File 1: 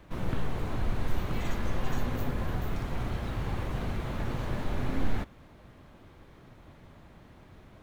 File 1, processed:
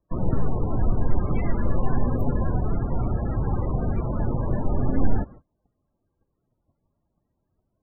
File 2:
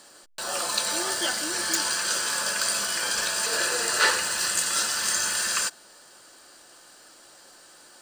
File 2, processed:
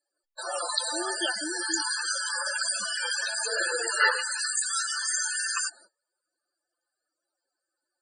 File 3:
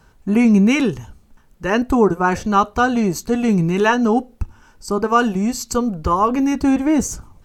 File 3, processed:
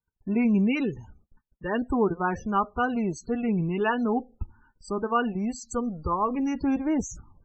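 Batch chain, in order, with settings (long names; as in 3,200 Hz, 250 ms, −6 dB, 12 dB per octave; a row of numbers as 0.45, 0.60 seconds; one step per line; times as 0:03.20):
noise gate −46 dBFS, range −30 dB
spectral peaks only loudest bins 32
loudness normalisation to −27 LKFS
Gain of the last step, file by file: +8.0, +1.5, −9.5 decibels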